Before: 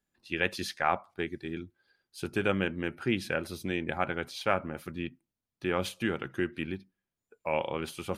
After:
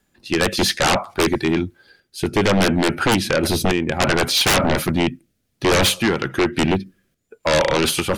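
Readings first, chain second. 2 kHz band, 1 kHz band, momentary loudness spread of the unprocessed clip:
+12.0 dB, +12.0 dB, 10 LU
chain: random-step tremolo, depth 70%; rotary cabinet horn 0.6 Hz; sine folder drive 18 dB, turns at -17.5 dBFS; trim +5.5 dB

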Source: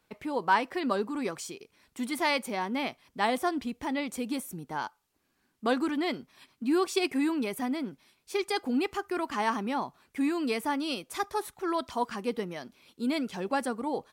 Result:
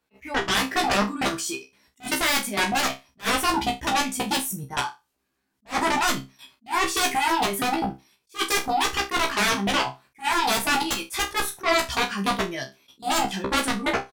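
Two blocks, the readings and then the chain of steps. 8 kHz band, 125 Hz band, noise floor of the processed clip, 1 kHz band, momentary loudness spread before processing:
+15.0 dB, +10.5 dB, -76 dBFS, +7.5 dB, 9 LU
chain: spectral noise reduction 11 dB; level held to a coarse grid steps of 16 dB; Chebyshev shaper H 7 -9 dB, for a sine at -20 dBFS; sine folder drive 9 dB, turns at -16.5 dBFS; doubling 15 ms -2.5 dB; flutter echo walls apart 5.2 m, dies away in 0.23 s; attacks held to a fixed rise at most 340 dB/s

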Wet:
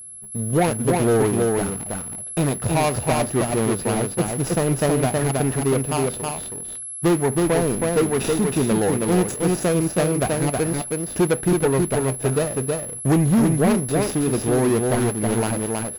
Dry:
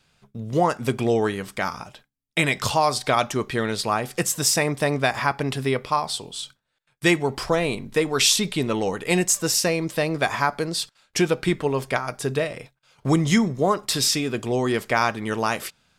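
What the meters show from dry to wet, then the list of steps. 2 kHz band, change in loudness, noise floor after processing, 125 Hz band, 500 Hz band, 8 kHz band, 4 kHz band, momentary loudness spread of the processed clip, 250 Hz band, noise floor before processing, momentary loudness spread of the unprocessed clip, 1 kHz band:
-5.0 dB, +2.0 dB, -33 dBFS, +6.0 dB, +3.5 dB, +0.5 dB, -8.5 dB, 6 LU, +5.0 dB, -72 dBFS, 9 LU, -1.5 dB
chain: median filter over 41 samples; whistle 11 kHz -40 dBFS; on a send: delay 320 ms -4 dB; on the sum: waveshaping leveller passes 2; trim -1.5 dB

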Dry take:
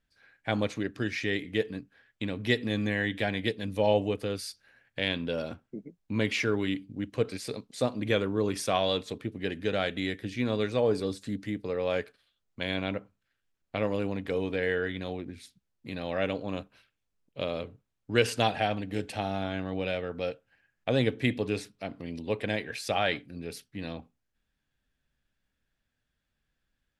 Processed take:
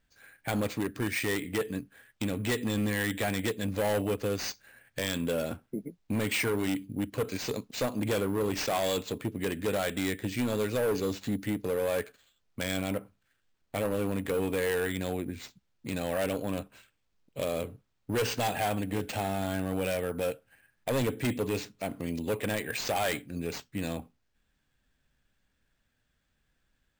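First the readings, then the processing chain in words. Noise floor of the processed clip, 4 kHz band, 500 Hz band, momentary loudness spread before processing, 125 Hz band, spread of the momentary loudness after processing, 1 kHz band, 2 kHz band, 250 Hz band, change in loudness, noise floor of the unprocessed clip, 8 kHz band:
-76 dBFS, -2.5 dB, -1.0 dB, 13 LU, 0.0 dB, 9 LU, -0.5 dB, -1.5 dB, 0.0 dB, -0.5 dB, -81 dBFS, +6.5 dB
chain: in parallel at -1.5 dB: compression, threshold -35 dBFS, peak gain reduction 16.5 dB; on the sum: careless resampling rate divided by 4×, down none, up hold; overload inside the chain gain 24.5 dB

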